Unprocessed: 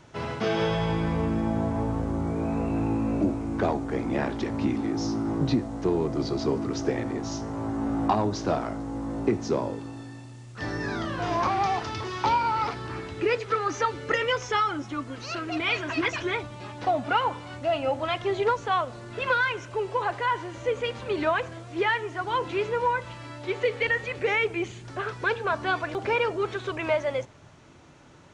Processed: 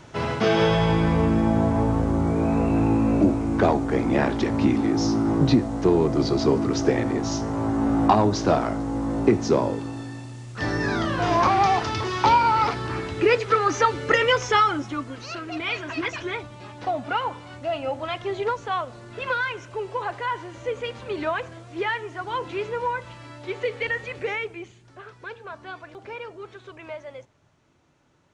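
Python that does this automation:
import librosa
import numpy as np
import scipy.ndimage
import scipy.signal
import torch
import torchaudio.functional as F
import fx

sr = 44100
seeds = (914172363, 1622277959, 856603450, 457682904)

y = fx.gain(x, sr, db=fx.line((14.62, 6.0), (15.39, -1.5), (24.21, -1.5), (24.79, -11.5)))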